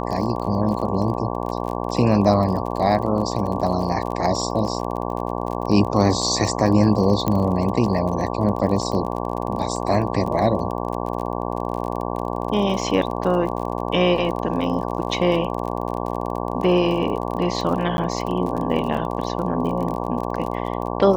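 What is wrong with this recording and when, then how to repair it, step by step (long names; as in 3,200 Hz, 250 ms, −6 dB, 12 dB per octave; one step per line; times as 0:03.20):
mains buzz 60 Hz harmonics 19 −26 dBFS
surface crackle 36 per second −28 dBFS
0:07.28: click −8 dBFS
0:17.97–0:17.98: drop-out 11 ms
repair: click removal
hum removal 60 Hz, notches 19
repair the gap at 0:17.97, 11 ms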